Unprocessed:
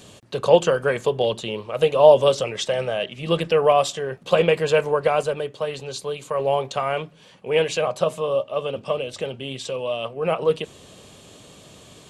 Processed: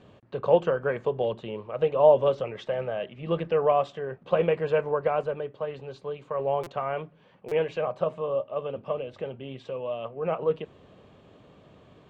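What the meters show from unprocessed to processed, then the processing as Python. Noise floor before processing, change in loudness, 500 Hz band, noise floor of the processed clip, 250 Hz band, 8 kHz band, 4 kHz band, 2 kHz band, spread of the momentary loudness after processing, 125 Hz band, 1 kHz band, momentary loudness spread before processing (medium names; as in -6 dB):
-49 dBFS, -6.0 dB, -5.5 dB, -56 dBFS, -5.5 dB, under -25 dB, -16.0 dB, -9.5 dB, 14 LU, -5.5 dB, -6.0 dB, 13 LU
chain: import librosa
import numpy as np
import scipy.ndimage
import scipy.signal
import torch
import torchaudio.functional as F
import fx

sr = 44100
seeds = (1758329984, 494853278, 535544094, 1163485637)

y = scipy.signal.sosfilt(scipy.signal.butter(2, 1800.0, 'lowpass', fs=sr, output='sos'), x)
y = fx.buffer_glitch(y, sr, at_s=(6.63, 7.48), block=256, repeats=5)
y = F.gain(torch.from_numpy(y), -5.5).numpy()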